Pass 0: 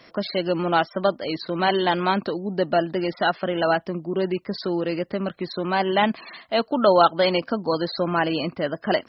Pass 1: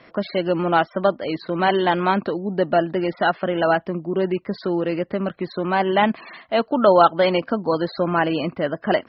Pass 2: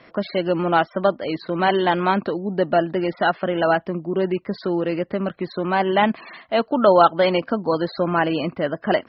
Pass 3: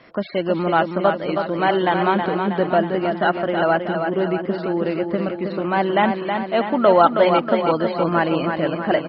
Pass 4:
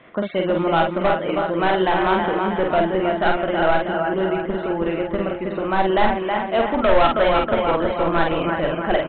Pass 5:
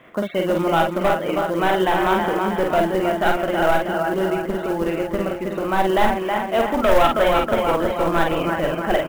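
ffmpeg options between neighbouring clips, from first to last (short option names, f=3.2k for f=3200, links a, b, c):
-af "lowpass=2.8k,volume=2.5dB"
-af anull
-filter_complex "[0:a]acrossover=split=3900[a][b];[b]acompressor=threshold=-55dB:ratio=4:attack=1:release=60[c];[a][c]amix=inputs=2:normalize=0,asplit=2[d][e];[e]aecho=0:1:320|640|960|1280|1600|1920|2240|2560:0.501|0.291|0.169|0.0978|0.0567|0.0329|0.0191|0.0111[f];[d][f]amix=inputs=2:normalize=0"
-filter_complex "[0:a]aresample=8000,asoftclip=type=hard:threshold=-13dB,aresample=44100,asubboost=boost=9:cutoff=59,asplit=2[a][b];[b]adelay=48,volume=-3.5dB[c];[a][c]amix=inputs=2:normalize=0"
-af "acrusher=bits=6:mode=log:mix=0:aa=0.000001"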